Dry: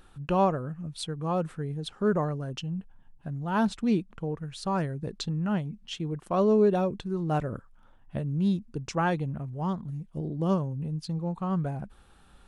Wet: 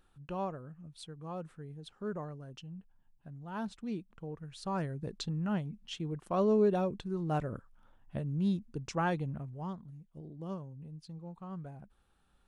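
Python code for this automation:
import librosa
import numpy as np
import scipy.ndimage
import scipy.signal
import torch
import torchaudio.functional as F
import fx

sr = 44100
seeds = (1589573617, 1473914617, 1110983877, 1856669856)

y = fx.gain(x, sr, db=fx.line((3.92, -13.0), (4.95, -5.0), (9.36, -5.0), (9.97, -14.5)))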